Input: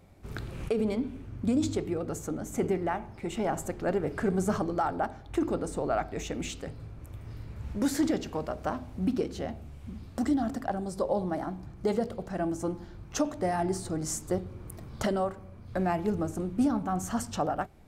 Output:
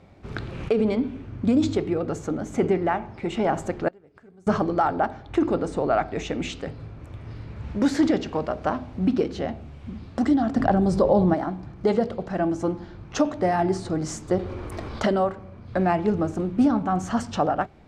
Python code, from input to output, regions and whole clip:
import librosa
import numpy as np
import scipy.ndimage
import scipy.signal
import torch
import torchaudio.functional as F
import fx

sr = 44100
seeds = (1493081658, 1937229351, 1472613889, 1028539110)

y = fx.chain(x, sr, fx.gate_flip(shuts_db=-26.0, range_db=-30),
    fx.high_shelf(hz=6000.0, db=10.5), at=(3.88, 4.47))
y = fx.chain(y, sr, fx.low_shelf(hz=250.0, db=9.0),
    fx.env_flatten(amount_pct=50), at=(10.56, 11.34))
y = fx.chain(y, sr, fx.peak_eq(hz=150.0, db=-14.0, octaves=0.98),
    fx.env_flatten(amount_pct=70), at=(14.39, 15.03))
y = scipy.signal.sosfilt(scipy.signal.butter(2, 4500.0, 'lowpass', fs=sr, output='sos'), y)
y = fx.low_shelf(y, sr, hz=61.0, db=-9.5)
y = y * librosa.db_to_amplitude(7.0)